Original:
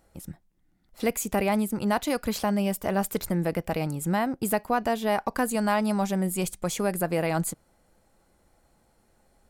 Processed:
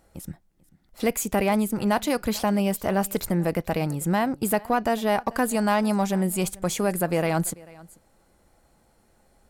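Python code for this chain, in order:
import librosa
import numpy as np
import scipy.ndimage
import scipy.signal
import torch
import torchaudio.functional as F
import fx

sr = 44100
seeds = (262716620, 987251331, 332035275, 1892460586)

p1 = x + 10.0 ** (-23.0 / 20.0) * np.pad(x, (int(441 * sr / 1000.0), 0))[:len(x)]
p2 = fx.clip_asym(p1, sr, top_db=-31.0, bottom_db=-16.5)
y = p1 + (p2 * 10.0 ** (-8.0 / 20.0))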